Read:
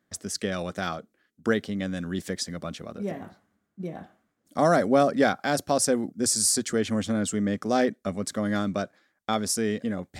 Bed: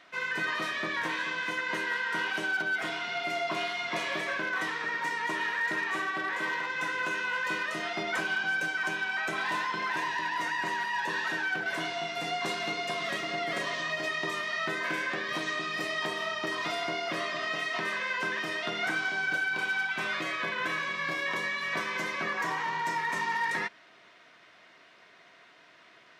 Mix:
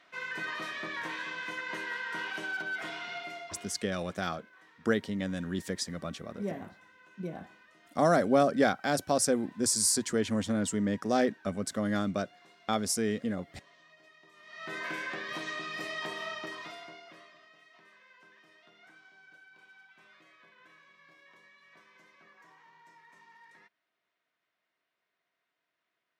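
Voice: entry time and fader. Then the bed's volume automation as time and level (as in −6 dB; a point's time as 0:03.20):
3.40 s, −3.5 dB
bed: 0:03.13 −5.5 dB
0:04.05 −27.5 dB
0:14.32 −27.5 dB
0:14.75 −5 dB
0:16.33 −5 dB
0:17.52 −27.5 dB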